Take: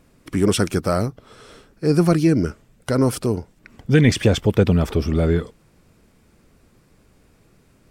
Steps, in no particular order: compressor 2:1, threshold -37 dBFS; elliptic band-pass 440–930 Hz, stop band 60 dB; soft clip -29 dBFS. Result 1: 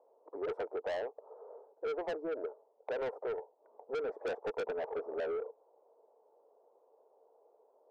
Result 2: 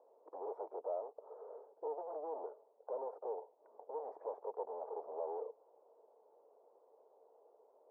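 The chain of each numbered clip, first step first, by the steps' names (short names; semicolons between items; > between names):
elliptic band-pass > soft clip > compressor; soft clip > compressor > elliptic band-pass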